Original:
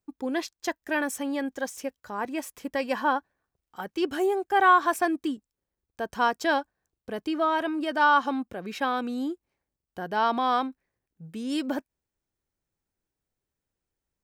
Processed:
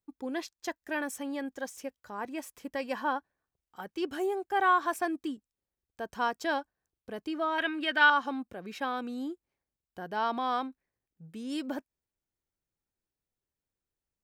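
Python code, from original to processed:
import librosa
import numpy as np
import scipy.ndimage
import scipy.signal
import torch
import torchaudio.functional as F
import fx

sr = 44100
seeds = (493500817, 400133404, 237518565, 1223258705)

y = fx.band_shelf(x, sr, hz=2400.0, db=12.0, octaves=1.7, at=(7.58, 8.1))
y = F.gain(torch.from_numpy(y), -6.0).numpy()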